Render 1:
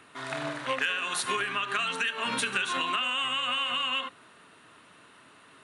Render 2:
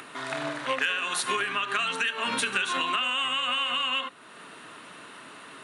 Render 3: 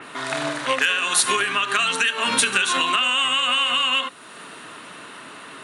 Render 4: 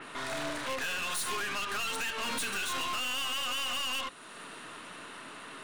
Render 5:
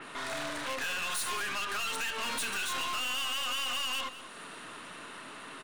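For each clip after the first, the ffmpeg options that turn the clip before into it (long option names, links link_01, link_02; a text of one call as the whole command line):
ffmpeg -i in.wav -filter_complex "[0:a]highpass=150,asplit=2[link_01][link_02];[link_02]acompressor=mode=upward:threshold=-31dB:ratio=2.5,volume=-0.5dB[link_03];[link_01][link_03]amix=inputs=2:normalize=0,volume=-4dB" out.wav
ffmpeg -i in.wav -af "adynamicequalizer=threshold=0.00794:dfrequency=4000:dqfactor=0.7:tfrequency=4000:tqfactor=0.7:attack=5:release=100:ratio=0.375:range=3.5:mode=boostabove:tftype=highshelf,volume=6dB" out.wav
ffmpeg -i in.wav -af "aeval=exprs='(tanh(25.1*val(0)+0.5)-tanh(0.5))/25.1':channel_layout=same,volume=-4dB" out.wav
ffmpeg -i in.wav -filter_complex "[0:a]acrossover=split=610[link_01][link_02];[link_01]asoftclip=type=tanh:threshold=-39.5dB[link_03];[link_03][link_02]amix=inputs=2:normalize=0,asplit=2[link_04][link_05];[link_05]adelay=204.1,volume=-13dB,highshelf=frequency=4000:gain=-4.59[link_06];[link_04][link_06]amix=inputs=2:normalize=0" out.wav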